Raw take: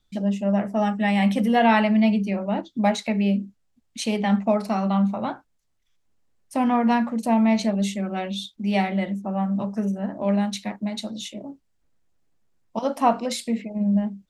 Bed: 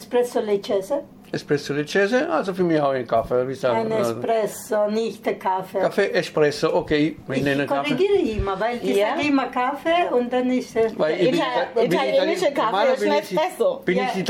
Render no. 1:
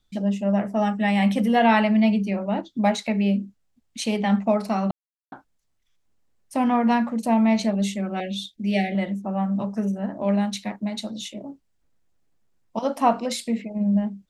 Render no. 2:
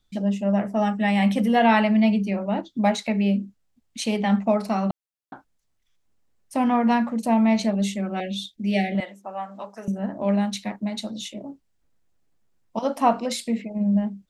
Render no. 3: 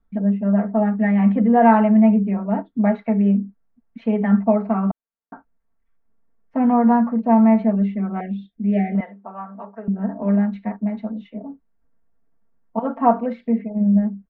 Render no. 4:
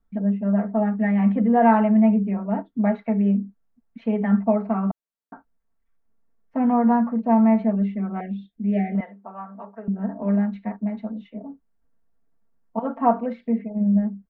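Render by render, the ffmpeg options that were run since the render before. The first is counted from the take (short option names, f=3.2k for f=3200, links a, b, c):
-filter_complex "[0:a]asettb=1/sr,asplit=3[a][b][c];[a]atrim=end=8.204[d];[b]atrim=start=8.2:end=8.95,asetpts=PTS-STARTPTS,afade=t=in:d=0.004:c=qsin,afade=t=out:st=0.746:d=0.004:c=qsin,asuperstop=centerf=1100:order=12:qfactor=1.3[e];[c]atrim=start=8.946[f];[d][e]acrossfade=d=0.004:c1=hsin:c2=qsin[g];[g][f]acrossfade=d=0.004:c1=qsin:c2=hsin,asplit=3[h][i][j];[h]atrim=end=4.91,asetpts=PTS-STARTPTS,afade=t=out:st=4.906:d=0.004:c=hsin[k];[i]atrim=start=4.91:end=5.32,asetpts=PTS-STARTPTS,volume=0[l];[j]atrim=start=5.32,asetpts=PTS-STARTPTS,afade=t=in:d=0.004:c=hsin[m];[k][l][m]concat=n=3:v=0:a=1"
-filter_complex "[0:a]asettb=1/sr,asplit=3[a][b][c];[a]atrim=end=9.004[d];[b]atrim=start=9:end=9.88,asetpts=PTS-STARTPTS,afade=t=in:d=0.004:c=qsin,afade=t=out:st=0.876:d=0.004:c=qsin,highpass=620[e];[c]atrim=start=9.876[f];[d][e]acrossfade=d=0.004:c1=hsin:c2=qsin[g];[g][f]acrossfade=d=0.004:c1=qsin:c2=hsin"
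-af "lowpass=f=1.7k:w=0.5412,lowpass=f=1.7k:w=1.3066,aecho=1:1:4.4:0.86"
-af "volume=-3dB"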